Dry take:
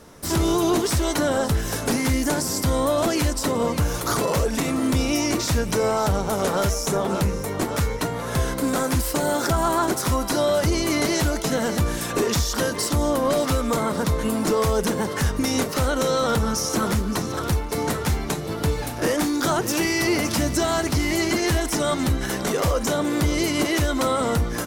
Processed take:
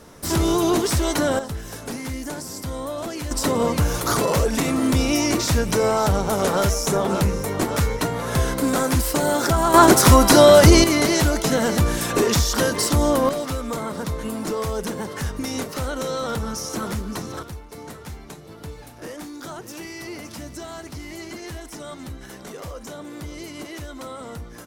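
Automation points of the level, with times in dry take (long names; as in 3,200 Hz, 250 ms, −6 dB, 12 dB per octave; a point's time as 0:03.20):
+1 dB
from 0:01.39 −8.5 dB
from 0:03.31 +2 dB
from 0:09.74 +10.5 dB
from 0:10.84 +3 dB
from 0:13.29 −5 dB
from 0:17.43 −13.5 dB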